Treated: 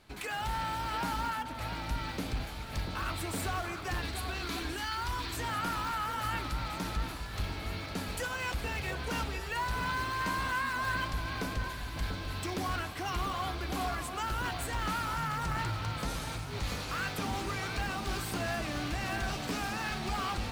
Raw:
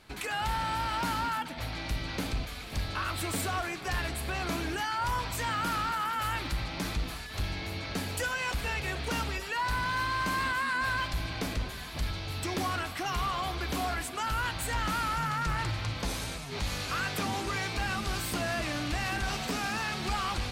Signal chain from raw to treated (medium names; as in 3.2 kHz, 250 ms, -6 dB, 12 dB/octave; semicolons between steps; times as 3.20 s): 4.02–5.37 s: fifteen-band graphic EQ 160 Hz -9 dB, 630 Hz -11 dB, 4 kHz +6 dB; in parallel at -9.5 dB: decimation with a swept rate 11×, swing 160% 2.8 Hz; on the sum: echo whose repeats swap between lows and highs 689 ms, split 1.6 kHz, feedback 58%, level -7 dB; trim -5 dB